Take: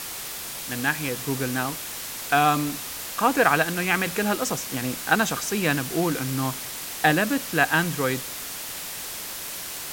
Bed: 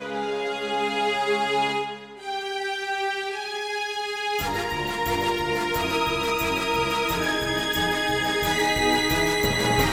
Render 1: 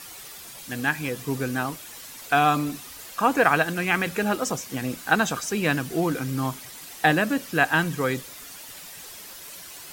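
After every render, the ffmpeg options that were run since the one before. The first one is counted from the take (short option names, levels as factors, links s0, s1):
-af "afftdn=nr=10:nf=-35"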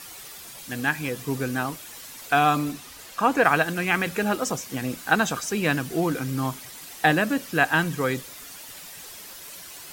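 -filter_complex "[0:a]asettb=1/sr,asplit=3[s0][s1][s2];[s0]atrim=end=2.724[s3];[s1]atrim=start=2.72:end=3.45,asetpts=PTS-STARTPTS,afade=t=in:d=0.004:c=qsin,afade=t=out:st=0.726:d=0.004:c=qsin,highshelf=f=9300:g=-6[s4];[s2]atrim=start=3.446[s5];[s3][s4]acrossfade=d=0.004:c1=hsin:c2=qsin[s6];[s6][s5]acrossfade=d=0.004:c1=qsin:c2=hsin"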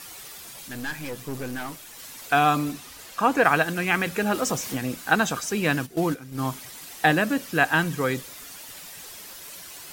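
-filter_complex "[0:a]asettb=1/sr,asplit=3[s0][s1][s2];[s0]atrim=end=0.684[s3];[s1]atrim=start=0.68:end=1.99,asetpts=PTS-STARTPTS,afade=t=in:d=0.004:c=qsin,afade=t=out:st=1.306:d=0.004:c=qsin,aeval=exprs='(tanh(22.4*val(0)+0.55)-tanh(0.55))/22.4':c=same[s4];[s2]atrim=start=1.986[s5];[s3][s4]acrossfade=d=0.004:c1=hsin:c2=qsin[s6];[s6][s5]acrossfade=d=0.004:c1=qsin:c2=hsin,asettb=1/sr,asplit=3[s7][s8][s9];[s7]atrim=end=4.344[s10];[s8]atrim=start=4.34:end=4.77,asetpts=PTS-STARTPTS,afade=t=in:d=0.004:c=qsin,afade=t=out:st=0.426:d=0.004:c=qsin,aeval=exprs='val(0)+0.5*0.0211*sgn(val(0))':c=same[s11];[s9]atrim=start=4.766[s12];[s10][s11]acrossfade=d=0.004:c1=hsin:c2=qsin[s13];[s13][s12]acrossfade=d=0.004:c1=qsin:c2=hsin,asplit=3[s14][s15][s16];[s14]afade=t=out:st=5.85:d=0.02[s17];[s15]agate=range=0.224:threshold=0.0447:ratio=16:release=100:detection=peak,afade=t=in:st=5.85:d=0.02,afade=t=out:st=6.45:d=0.02[s18];[s16]afade=t=in:st=6.45:d=0.02[s19];[s17][s18][s19]amix=inputs=3:normalize=0"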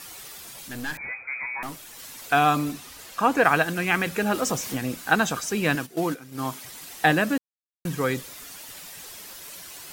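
-filter_complex "[0:a]asettb=1/sr,asplit=3[s0][s1][s2];[s0]atrim=end=0.974[s3];[s1]atrim=start=0.97:end=1.63,asetpts=PTS-STARTPTS,afade=t=in:d=0.004:c=qsin,afade=t=out:st=0.656:d=0.004:c=qsin,lowpass=f=2100:t=q:w=0.5098,lowpass=f=2100:t=q:w=0.6013,lowpass=f=2100:t=q:w=0.9,lowpass=f=2100:t=q:w=2.563,afreqshift=-2500[s4];[s2]atrim=start=1.626[s5];[s3][s4]acrossfade=d=0.004:c1=hsin:c2=qsin[s6];[s6][s5]acrossfade=d=0.004:c1=qsin:c2=hsin,asettb=1/sr,asplit=3[s7][s8][s9];[s7]atrim=end=5.754[s10];[s8]atrim=start=5.75:end=6.64,asetpts=PTS-STARTPTS,afade=t=in:d=0.004:c=qsin,afade=t=out:st=0.886:d=0.004:c=qsin,highpass=f=220:p=1[s11];[s9]atrim=start=6.636[s12];[s10][s11]acrossfade=d=0.004:c1=hsin:c2=qsin[s13];[s13][s12]acrossfade=d=0.004:c1=qsin:c2=hsin,asplit=3[s14][s15][s16];[s14]atrim=end=7.38,asetpts=PTS-STARTPTS,afade=t=out:st=7.376:d=0.004:c=hsin[s17];[s15]atrim=start=7.38:end=7.85,asetpts=PTS-STARTPTS,volume=0[s18];[s16]atrim=start=7.85,asetpts=PTS-STARTPTS,afade=t=in:d=0.004:c=hsin[s19];[s17][s18][s19]concat=n=3:v=0:a=1"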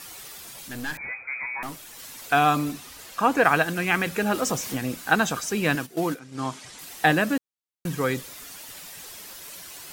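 -filter_complex "[0:a]asettb=1/sr,asplit=3[s0][s1][s2];[s0]atrim=end=6.194[s3];[s1]atrim=start=6.19:end=6.79,asetpts=PTS-STARTPTS,afade=t=in:d=0.004:c=qsin,afade=t=out:st=0.596:d=0.004:c=qsin,lowpass=f=8500:w=0.5412,lowpass=f=8500:w=1.3066[s4];[s2]atrim=start=6.786[s5];[s3][s4]acrossfade=d=0.004:c1=hsin:c2=qsin[s6];[s6][s5]acrossfade=d=0.004:c1=qsin:c2=hsin"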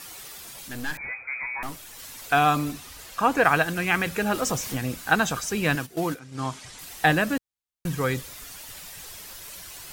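-af "asubboost=boost=3:cutoff=120"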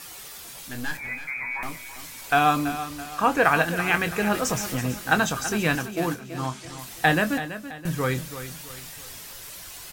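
-filter_complex "[0:a]asplit=2[s0][s1];[s1]adelay=24,volume=0.299[s2];[s0][s2]amix=inputs=2:normalize=0,aecho=1:1:331|662|993|1324:0.251|0.103|0.0422|0.0173"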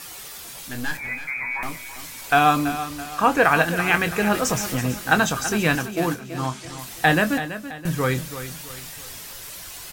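-af "volume=1.41,alimiter=limit=0.708:level=0:latency=1"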